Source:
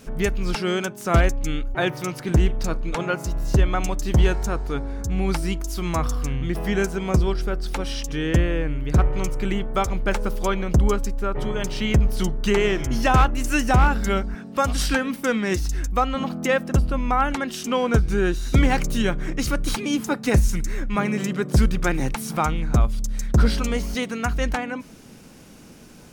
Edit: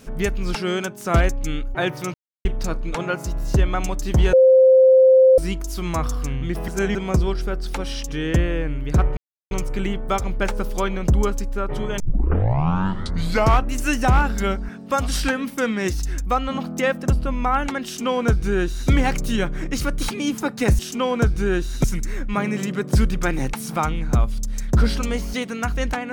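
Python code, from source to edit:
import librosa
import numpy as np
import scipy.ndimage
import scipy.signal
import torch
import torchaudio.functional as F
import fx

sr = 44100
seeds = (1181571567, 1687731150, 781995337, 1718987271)

y = fx.edit(x, sr, fx.silence(start_s=2.14, length_s=0.31),
    fx.bleep(start_s=4.33, length_s=1.05, hz=522.0, db=-8.5),
    fx.reverse_span(start_s=6.68, length_s=0.27),
    fx.insert_silence(at_s=9.17, length_s=0.34),
    fx.tape_start(start_s=11.66, length_s=1.71),
    fx.duplicate(start_s=17.51, length_s=1.05, to_s=20.45), tone=tone)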